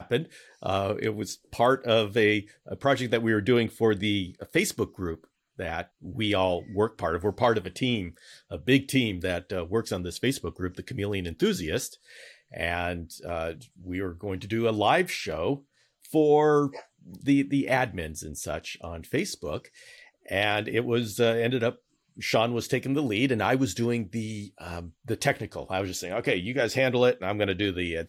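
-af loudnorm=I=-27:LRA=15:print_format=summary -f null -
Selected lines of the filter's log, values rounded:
Input Integrated:    -27.2 LUFS
Input True Peak:      -9.9 dBTP
Input LRA:             3.9 LU
Input Threshold:     -37.7 LUFS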